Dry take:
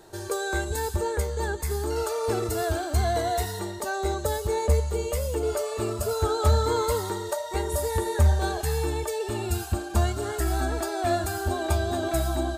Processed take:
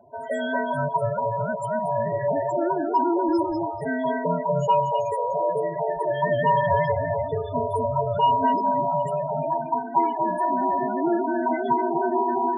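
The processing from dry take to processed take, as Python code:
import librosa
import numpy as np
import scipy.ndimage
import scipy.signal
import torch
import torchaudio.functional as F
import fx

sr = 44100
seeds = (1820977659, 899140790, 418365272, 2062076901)

p1 = fx.band_invert(x, sr, width_hz=1000)
p2 = fx.dynamic_eq(p1, sr, hz=210.0, q=0.81, threshold_db=-40.0, ratio=4.0, max_db=4)
p3 = fx.quant_dither(p2, sr, seeds[0], bits=6, dither='none')
p4 = p2 + F.gain(torch.from_numpy(p3), -11.5).numpy()
p5 = 10.0 ** (-14.5 / 20.0) * np.tanh(p4 / 10.0 ** (-14.5 / 20.0))
p6 = p5 + fx.echo_single(p5, sr, ms=245, db=-4.5, dry=0)
y = fx.spec_topn(p6, sr, count=16)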